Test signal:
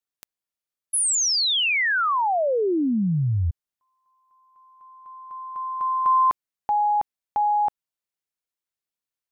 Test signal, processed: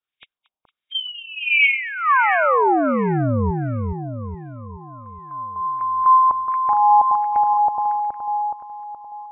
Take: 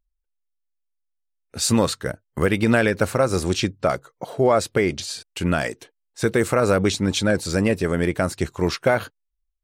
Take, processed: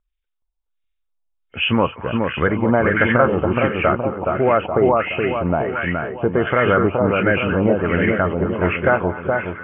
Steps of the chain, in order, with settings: knee-point frequency compression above 2.1 kHz 4:1; two-band feedback delay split 1.3 kHz, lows 421 ms, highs 229 ms, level -3 dB; LFO low-pass sine 1.4 Hz 860–2000 Hz

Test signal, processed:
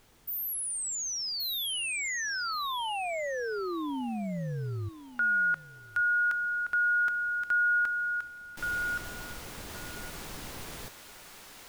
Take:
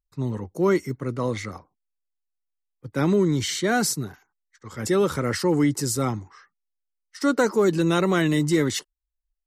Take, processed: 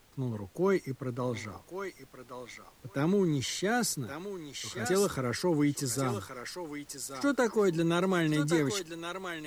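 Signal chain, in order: added noise pink -54 dBFS; on a send: thinning echo 1123 ms, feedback 17%, high-pass 800 Hz, level -4.5 dB; on the sum: trim -7 dB

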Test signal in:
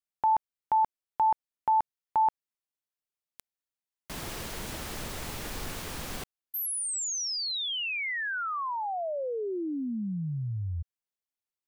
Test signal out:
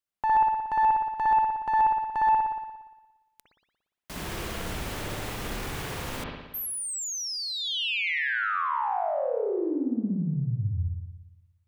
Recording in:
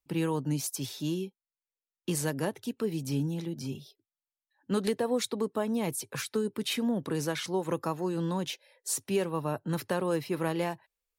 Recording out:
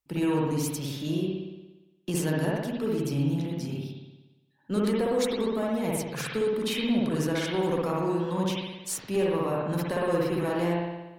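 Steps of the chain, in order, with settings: single-diode clipper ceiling -22 dBFS; spring tank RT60 1.1 s, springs 58 ms, chirp 60 ms, DRR -3.5 dB

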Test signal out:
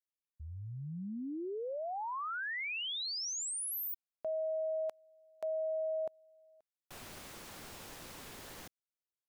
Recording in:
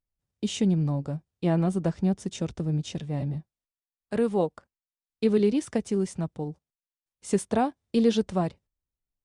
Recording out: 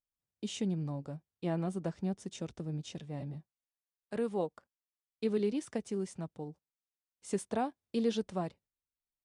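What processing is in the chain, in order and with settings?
bass shelf 110 Hz -9.5 dB; trim -8 dB

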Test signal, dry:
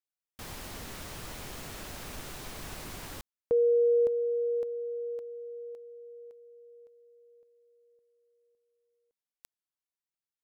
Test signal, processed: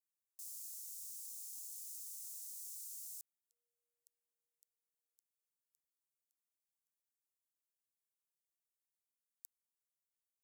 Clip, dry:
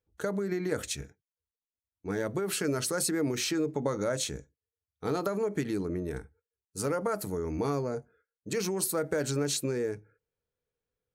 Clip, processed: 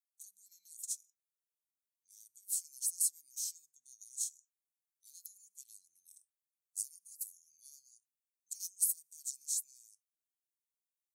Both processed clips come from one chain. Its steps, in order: inverse Chebyshev high-pass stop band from 1.6 kHz, stop band 70 dB; trim +1 dB

